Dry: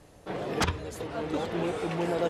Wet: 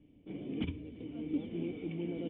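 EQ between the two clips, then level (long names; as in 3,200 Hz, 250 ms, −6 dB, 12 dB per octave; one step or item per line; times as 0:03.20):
formant resonators in series i
high-frequency loss of the air 55 metres
+3.0 dB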